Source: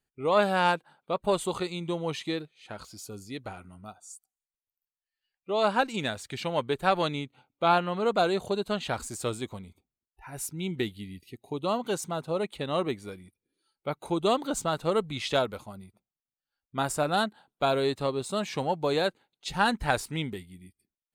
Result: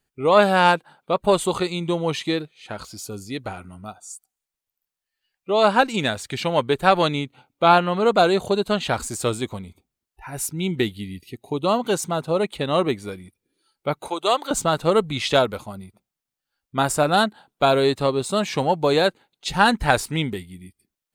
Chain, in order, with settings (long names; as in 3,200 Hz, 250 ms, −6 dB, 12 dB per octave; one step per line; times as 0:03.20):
0:14.08–0:14.51: high-pass filter 610 Hz 12 dB per octave
level +8 dB